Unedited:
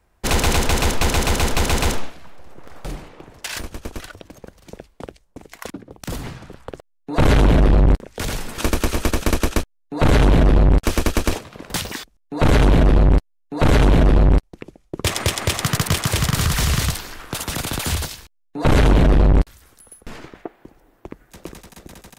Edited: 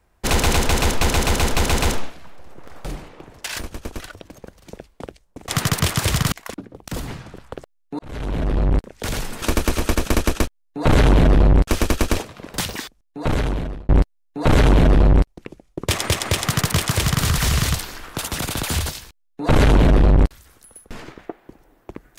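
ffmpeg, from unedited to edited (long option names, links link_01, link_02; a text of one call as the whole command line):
ffmpeg -i in.wav -filter_complex "[0:a]asplit=5[link_01][link_02][link_03][link_04][link_05];[link_01]atrim=end=5.482[link_06];[link_02]atrim=start=15.558:end=16.402[link_07];[link_03]atrim=start=5.478:end=7.15,asetpts=PTS-STARTPTS,afade=type=out:start_time=1.668:duration=0.004:curve=hsin[link_08];[link_04]atrim=start=7.15:end=13.05,asetpts=PTS-STARTPTS,afade=type=in:duration=1.15,afade=type=out:start_time=4.81:duration=1.09[link_09];[link_05]atrim=start=13.05,asetpts=PTS-STARTPTS,afade=type=in:duration=0.004:curve=hsin[link_10];[link_06][link_07]acrossfade=duration=0.004:curve1=hsin:curve2=hsin[link_11];[link_08][link_09][link_10]concat=n=3:v=0:a=1[link_12];[link_11][link_12]acrossfade=duration=0.004:curve1=hsin:curve2=hsin" out.wav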